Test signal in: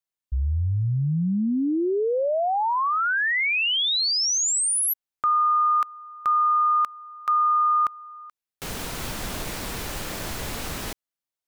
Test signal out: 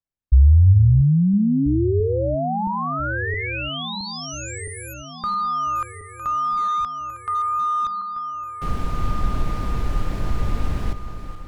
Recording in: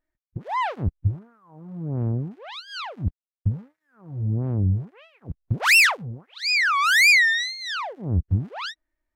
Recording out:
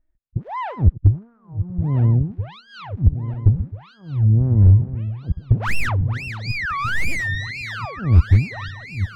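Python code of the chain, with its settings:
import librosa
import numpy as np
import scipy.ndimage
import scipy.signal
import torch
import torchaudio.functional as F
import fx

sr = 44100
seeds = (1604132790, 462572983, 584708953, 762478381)

y = fx.reverse_delay_fb(x, sr, ms=668, feedback_pct=68, wet_db=-11.5)
y = 10.0 ** (-15.5 / 20.0) * (np.abs((y / 10.0 ** (-15.5 / 20.0) + 3.0) % 4.0 - 2.0) - 1.0)
y = fx.riaa(y, sr, side='playback')
y = y * 10.0 ** (-2.5 / 20.0)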